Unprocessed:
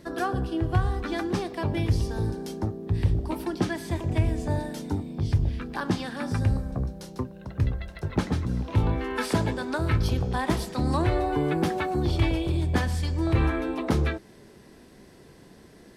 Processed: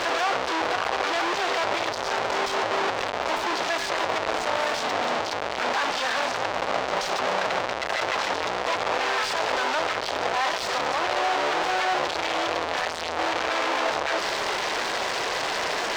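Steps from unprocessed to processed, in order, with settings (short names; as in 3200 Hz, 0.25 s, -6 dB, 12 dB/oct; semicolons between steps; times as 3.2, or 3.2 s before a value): infinite clipping; HPF 610 Hz 24 dB/oct; high shelf 4500 Hz +10 dB; in parallel at -1 dB: negative-ratio compressor -31 dBFS; on the sum: hard clip -18.5 dBFS, distortion -6 dB; air absorption 170 m; gain +5 dB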